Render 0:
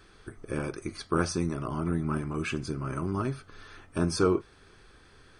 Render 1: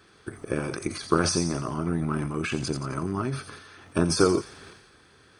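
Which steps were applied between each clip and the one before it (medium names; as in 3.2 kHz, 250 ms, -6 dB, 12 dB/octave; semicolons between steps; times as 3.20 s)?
high-pass 91 Hz 12 dB/octave; transient shaper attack +7 dB, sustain +11 dB; feedback echo behind a high-pass 87 ms, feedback 46%, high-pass 4.2 kHz, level -4.5 dB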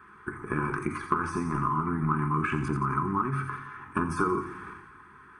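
FFT filter 370 Hz 0 dB, 590 Hz -21 dB, 1 kHz +13 dB, 2.2 kHz 0 dB, 4.4 kHz -22 dB, 12 kHz -6 dB; compression 4:1, threshold -25 dBFS, peak gain reduction 12.5 dB; reverberation RT60 0.80 s, pre-delay 5 ms, DRR 5 dB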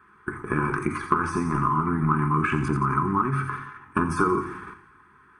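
gate -41 dBFS, range -8 dB; trim +4.5 dB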